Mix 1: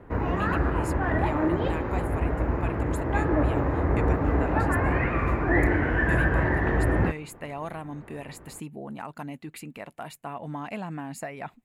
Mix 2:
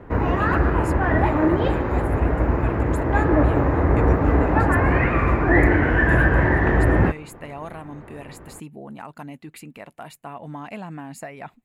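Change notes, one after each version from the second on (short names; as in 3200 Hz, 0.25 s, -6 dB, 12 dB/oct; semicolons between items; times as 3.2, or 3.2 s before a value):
background +6.0 dB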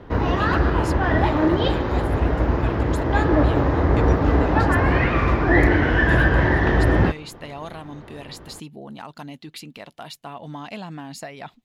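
master: add band shelf 4300 Hz +12 dB 1.2 oct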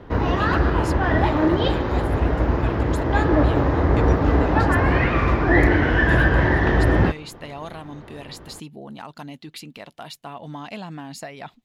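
none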